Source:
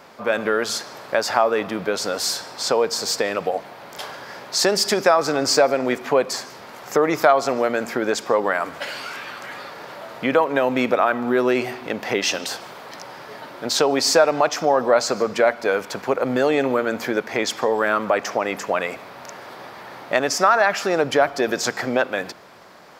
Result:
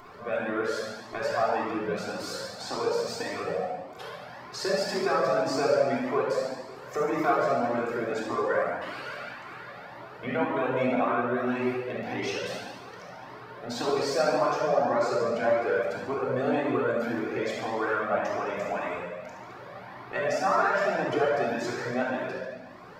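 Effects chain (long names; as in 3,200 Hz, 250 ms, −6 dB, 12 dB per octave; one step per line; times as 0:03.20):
noise gate −32 dBFS, range −11 dB
high-shelf EQ 3,000 Hz −11.5 dB
upward compression, threshold −25 dBFS
feedback echo with a high-pass in the loop 71 ms, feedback 67%, level −7.5 dB
rectangular room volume 1,300 cubic metres, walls mixed, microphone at 3.4 metres
flanger whose copies keep moving one way rising 1.8 Hz
level −8.5 dB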